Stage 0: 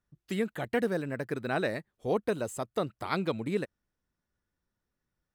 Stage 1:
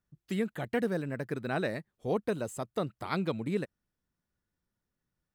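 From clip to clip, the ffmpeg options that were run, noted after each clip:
ffmpeg -i in.wav -af "equalizer=frequency=160:width=1.1:gain=4,volume=-2.5dB" out.wav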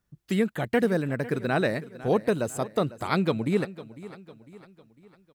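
ffmpeg -i in.wav -af "aecho=1:1:502|1004|1506|2008:0.141|0.0664|0.0312|0.0147,volume=7dB" out.wav

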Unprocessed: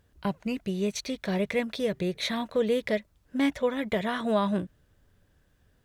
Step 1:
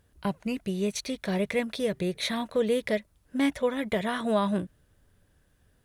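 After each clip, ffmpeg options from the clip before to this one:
ffmpeg -i in.wav -af "equalizer=frequency=9900:width_type=o:width=0.38:gain=8.5" out.wav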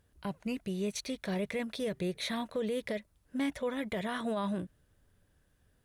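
ffmpeg -i in.wav -af "alimiter=limit=-21dB:level=0:latency=1:release=23,volume=-4.5dB" out.wav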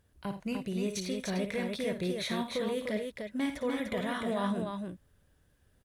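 ffmpeg -i in.wav -af "aecho=1:1:55|86|298:0.376|0.168|0.596" out.wav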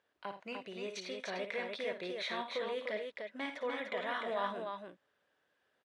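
ffmpeg -i in.wav -af "highpass=550,lowpass=3600" out.wav

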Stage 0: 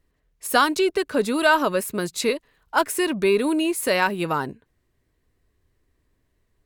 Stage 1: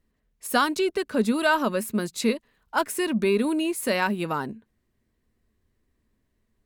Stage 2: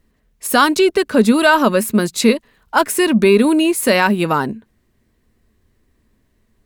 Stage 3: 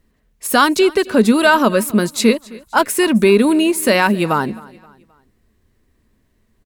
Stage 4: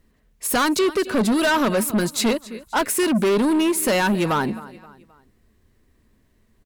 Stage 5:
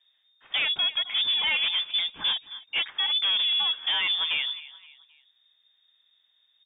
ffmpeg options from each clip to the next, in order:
ffmpeg -i in.wav -af "equalizer=frequency=220:width=5.7:gain=13,volume=-4dB" out.wav
ffmpeg -i in.wav -af "alimiter=level_in=12dB:limit=-1dB:release=50:level=0:latency=1,volume=-1dB" out.wav
ffmpeg -i in.wav -af "aecho=1:1:263|526|789:0.0794|0.0326|0.0134" out.wav
ffmpeg -i in.wav -af "asoftclip=type=tanh:threshold=-15.5dB" out.wav
ffmpeg -i in.wav -af "lowpass=frequency=3100:width_type=q:width=0.5098,lowpass=frequency=3100:width_type=q:width=0.6013,lowpass=frequency=3100:width_type=q:width=0.9,lowpass=frequency=3100:width_type=q:width=2.563,afreqshift=-3700,volume=-6.5dB" out.wav

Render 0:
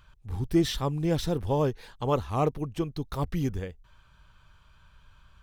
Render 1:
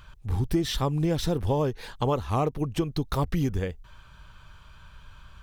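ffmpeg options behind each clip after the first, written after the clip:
ffmpeg -i in.wav -af "acompressor=threshold=-30dB:ratio=6,volume=8dB" out.wav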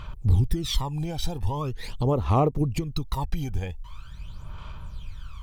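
ffmpeg -i in.wav -af "equalizer=frequency=1600:width=6:gain=-10.5,alimiter=limit=-23dB:level=0:latency=1:release=300,aphaser=in_gain=1:out_gain=1:delay=1.3:decay=0.72:speed=0.43:type=sinusoidal,volume=1.5dB" out.wav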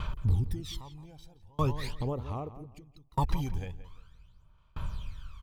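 ffmpeg -i in.wav -filter_complex "[0:a]asplit=2[link_01][link_02];[link_02]acompressor=threshold=-29dB:ratio=6,volume=0dB[link_03];[link_01][link_03]amix=inputs=2:normalize=0,asplit=2[link_04][link_05];[link_05]adelay=173,lowpass=frequency=3000:poles=1,volume=-10dB,asplit=2[link_06][link_07];[link_07]adelay=173,lowpass=frequency=3000:poles=1,volume=0.4,asplit=2[link_08][link_09];[link_09]adelay=173,lowpass=frequency=3000:poles=1,volume=0.4,asplit=2[link_10][link_11];[link_11]adelay=173,lowpass=frequency=3000:poles=1,volume=0.4[link_12];[link_04][link_06][link_08][link_10][link_12]amix=inputs=5:normalize=0,aeval=exprs='val(0)*pow(10,-34*if(lt(mod(0.63*n/s,1),2*abs(0.63)/1000),1-mod(0.63*n/s,1)/(2*abs(0.63)/1000),(mod(0.63*n/s,1)-2*abs(0.63)/1000)/(1-2*abs(0.63)/1000))/20)':channel_layout=same,volume=-1.5dB" out.wav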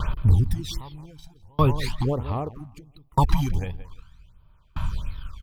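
ffmpeg -i in.wav -filter_complex "[0:a]asplit=2[link_01][link_02];[link_02]aeval=exprs='sgn(val(0))*max(abs(val(0))-0.00501,0)':channel_layout=same,volume=-4dB[link_03];[link_01][link_03]amix=inputs=2:normalize=0,afftfilt=real='re*(1-between(b*sr/1024,400*pow(7800/400,0.5+0.5*sin(2*PI*1.4*pts/sr))/1.41,400*pow(7800/400,0.5+0.5*sin(2*PI*1.4*pts/sr))*1.41))':imag='im*(1-between(b*sr/1024,400*pow(7800/400,0.5+0.5*sin(2*PI*1.4*pts/sr))/1.41,400*pow(7800/400,0.5+0.5*sin(2*PI*1.4*pts/sr))*1.41))':win_size=1024:overlap=0.75,volume=5dB" out.wav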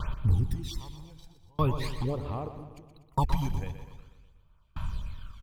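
ffmpeg -i in.wav -af "aecho=1:1:122|244|366|488|610|732:0.282|0.158|0.0884|0.0495|0.0277|0.0155,volume=-7dB" out.wav

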